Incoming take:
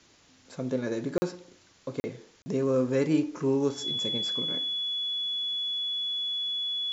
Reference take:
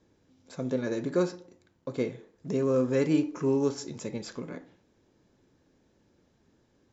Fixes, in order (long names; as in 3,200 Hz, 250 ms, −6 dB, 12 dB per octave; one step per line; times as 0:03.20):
notch filter 3,400 Hz, Q 30
repair the gap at 0:01.18/0:02.00/0:02.42, 40 ms
downward expander −52 dBFS, range −21 dB